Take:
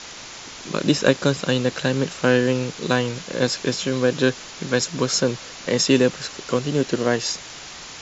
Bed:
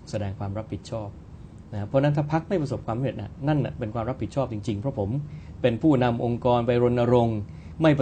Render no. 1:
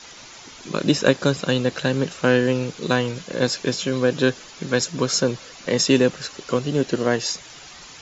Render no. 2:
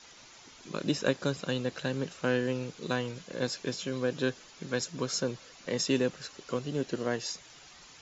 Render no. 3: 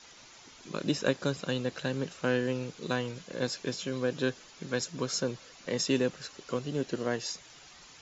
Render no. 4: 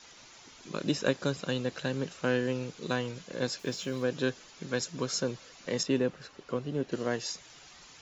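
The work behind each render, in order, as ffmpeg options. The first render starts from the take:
-af "afftdn=nr=8:nf=-38"
-af "volume=-11dB"
-af anull
-filter_complex "[0:a]asettb=1/sr,asplit=3[a][b][c];[a]atrim=end=3.594[d];[b]atrim=start=3.59:end=4.06,asetpts=PTS-STARTPTS,afade=t=in:d=0.004:c=qsin,afade=t=out:st=0.466:d=0.004:c=qsin,aeval=exprs='val(0)*gte(abs(val(0)),0.00211)':c=same[e];[c]atrim=start=4.056[f];[d][e]acrossfade=d=0.004:c1=hsin:c2=qsin[g];[g][f]acrossfade=d=0.004:c1=qsin:c2=hsin,asettb=1/sr,asplit=3[h][i][j];[h]atrim=end=5.834[k];[i]atrim=start=5.83:end=6.92,asetpts=PTS-STARTPTS,afade=t=in:d=0.004:c=qsin,afade=t=out:st=1.086:d=0.004:c=qsin,lowpass=f=2k:p=1[l];[j]atrim=start=6.916[m];[k][l]acrossfade=d=0.004:c1=hsin:c2=qsin[n];[n][m]acrossfade=d=0.004:c1=qsin:c2=hsin"

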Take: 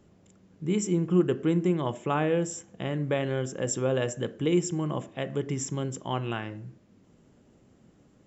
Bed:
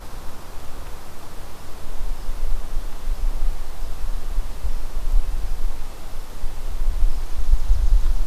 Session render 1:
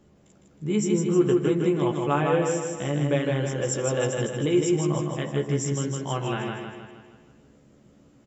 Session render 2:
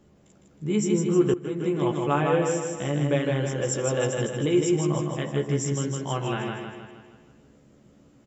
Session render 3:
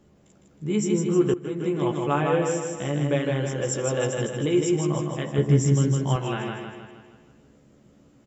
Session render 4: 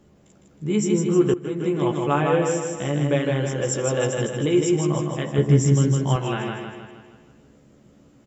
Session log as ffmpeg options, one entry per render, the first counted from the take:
-filter_complex "[0:a]asplit=2[a][b];[b]adelay=14,volume=-4dB[c];[a][c]amix=inputs=2:normalize=0,aecho=1:1:157|314|471|628|785|942|1099:0.668|0.348|0.181|0.094|0.0489|0.0254|0.0132"
-filter_complex "[0:a]asplit=2[a][b];[a]atrim=end=1.34,asetpts=PTS-STARTPTS,afade=t=out:st=1.336:d=0.004:c=hsin:silence=0.158489[c];[b]atrim=start=1.34,asetpts=PTS-STARTPTS,afade=t=in:d=0.54:silence=0.158489[d];[c][d]concat=n=2:v=0:a=1"
-filter_complex "[0:a]asettb=1/sr,asplit=3[a][b][c];[a]atrim=end=5.384[d];[b]atrim=start=5.38:end=6.16,asetpts=PTS-STARTPTS,afade=t=in:d=0.004:c=qsin,afade=t=out:st=0.776:d=0.004:c=qsin,lowshelf=f=250:g=11.5[e];[c]atrim=start=6.156[f];[d][e]acrossfade=d=0.004:c1=hsin:c2=qsin[g];[g][f]acrossfade=d=0.004:c1=qsin:c2=hsin"
-af "volume=2.5dB"

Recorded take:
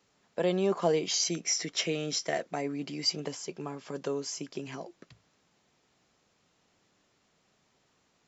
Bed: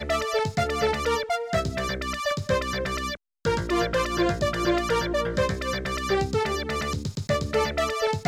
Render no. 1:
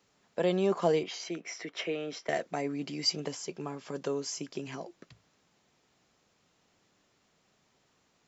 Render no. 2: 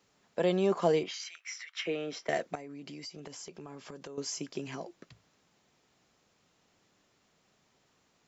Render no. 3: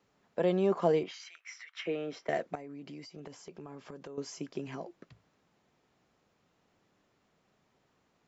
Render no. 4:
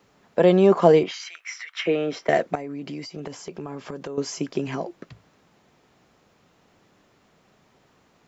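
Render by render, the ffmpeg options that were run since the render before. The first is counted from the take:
-filter_complex "[0:a]asettb=1/sr,asplit=3[a][b][c];[a]atrim=end=1.034[d];[b]atrim=start=1.03:end=2.29,asetpts=PTS-STARTPTS,afade=t=in:d=0.004:c=qsin,afade=t=out:st=1.256:d=0.004:c=qsin,acrossover=split=280 3000:gain=0.251 1 0.126[e][f][g];[e][f][g]amix=inputs=3:normalize=0[h];[c]atrim=start=2.286[i];[d][h]acrossfade=d=0.004:c1=hsin:c2=qsin[j];[j][i]acrossfade=d=0.004:c1=qsin:c2=hsin"
-filter_complex "[0:a]asettb=1/sr,asplit=3[a][b][c];[a]atrim=end=1.114[d];[b]atrim=start=1.11:end=1.86,asetpts=PTS-STARTPTS,afade=t=in:d=0.004:c=qsin,afade=t=out:st=0.746:d=0.004:c=qsin,highpass=f=1.3k:w=0.5412,highpass=f=1.3k:w=1.3066[e];[c]atrim=start=1.856[f];[d][e]acrossfade=d=0.004:c1=hsin:c2=qsin[g];[g][f]acrossfade=d=0.004:c1=qsin:c2=hsin,asettb=1/sr,asplit=3[h][i][j];[h]atrim=end=2.554[k];[i]atrim=start=2.55:end=4.18,asetpts=PTS-STARTPTS,afade=t=in:d=0.004:c=qsin,afade=t=out:st=1.626:d=0.004:c=qsin,acompressor=threshold=-41dB:ratio=10:attack=3.2:release=140:knee=1:detection=peak[l];[j]atrim=start=4.176[m];[k][l]acrossfade=d=0.004:c1=hsin:c2=qsin[n];[n][m]acrossfade=d=0.004:c1=qsin:c2=hsin"
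-af "highshelf=f=3.2k:g=-11.5"
-af "volume=12dB"

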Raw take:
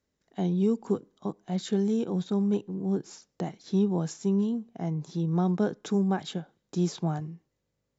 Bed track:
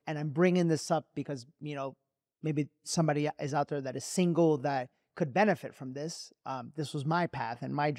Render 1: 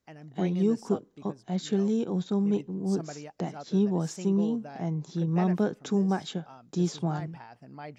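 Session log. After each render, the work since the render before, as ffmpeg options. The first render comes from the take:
-filter_complex "[1:a]volume=-12dB[a];[0:a][a]amix=inputs=2:normalize=0"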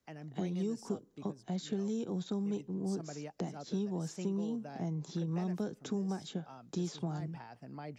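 -filter_complex "[0:a]acrossover=split=110|480|4700[a][b][c][d];[a]acompressor=threshold=-55dB:ratio=4[e];[b]acompressor=threshold=-36dB:ratio=4[f];[c]acompressor=threshold=-48dB:ratio=4[g];[d]acompressor=threshold=-52dB:ratio=4[h];[e][f][g][h]amix=inputs=4:normalize=0"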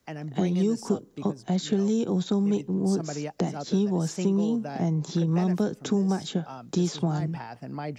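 -af "volume=11dB"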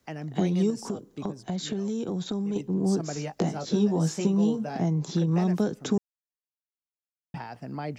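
-filter_complex "[0:a]asettb=1/sr,asplit=3[a][b][c];[a]atrim=end=0.704[d];[b]atrim=start=0.7:end=2.56,asetpts=PTS-STARTPTS,afade=t=in:d=0.004:c=qsin,afade=t=out:st=1.856:d=0.004:c=qsin,acompressor=threshold=-26dB:ratio=6:attack=3.2:release=140:knee=1:detection=peak[e];[c]atrim=start=2.556[f];[d][e]acrossfade=d=0.004:c1=hsin:c2=qsin[g];[g][f]acrossfade=d=0.004:c1=qsin:c2=hsin,asettb=1/sr,asplit=3[h][i][j];[h]atrim=end=3.144[k];[i]atrim=start=3.14:end=4.77,asetpts=PTS-STARTPTS,afade=t=in:d=0.004:c=qsin,afade=t=out:st=1.626:d=0.004:c=qsin,asplit=2[l][m];[m]adelay=19,volume=-5.5dB[n];[l][n]amix=inputs=2:normalize=0,atrim=end_sample=71883[o];[j]atrim=start=4.766[p];[k][o]acrossfade=d=0.004:c1=hsin:c2=qsin[q];[q][p]acrossfade=d=0.004:c1=qsin:c2=hsin,asplit=3[r][s][t];[r]atrim=end=5.98,asetpts=PTS-STARTPTS,afade=t=out:st=5.976:d=0.004:c=hsin[u];[s]atrim=start=5.98:end=7.34,asetpts=PTS-STARTPTS,volume=0[v];[t]atrim=start=7.34,asetpts=PTS-STARTPTS,afade=t=in:d=0.004:c=hsin[w];[u][v][w]concat=n=3:v=0:a=1"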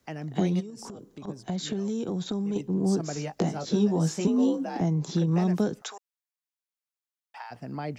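-filter_complex "[0:a]asplit=3[a][b][c];[a]afade=t=out:st=0.59:d=0.02[d];[b]acompressor=threshold=-37dB:ratio=8:attack=3.2:release=140:knee=1:detection=peak,afade=t=in:st=0.59:d=0.02,afade=t=out:st=1.27:d=0.02[e];[c]afade=t=in:st=1.27:d=0.02[f];[d][e][f]amix=inputs=3:normalize=0,asettb=1/sr,asplit=3[g][h][i];[g]atrim=end=4.274[j];[h]atrim=start=4.27:end=4.81,asetpts=PTS-STARTPTS,afade=t=in:d=0.004:c=qsin,afade=t=out:st=0.536:d=0.004:c=qsin,afreqshift=53[k];[i]atrim=start=4.806[l];[j][k]acrossfade=d=0.004:c1=hsin:c2=qsin[m];[m][l]acrossfade=d=0.004:c1=qsin:c2=hsin,asplit=3[n][o][p];[n]afade=t=out:st=5.8:d=0.02[q];[o]highpass=f=750:w=0.5412,highpass=f=750:w=1.3066,afade=t=in:st=5.8:d=0.02,afade=t=out:st=7.5:d=0.02[r];[p]afade=t=in:st=7.5:d=0.02[s];[q][r][s]amix=inputs=3:normalize=0"

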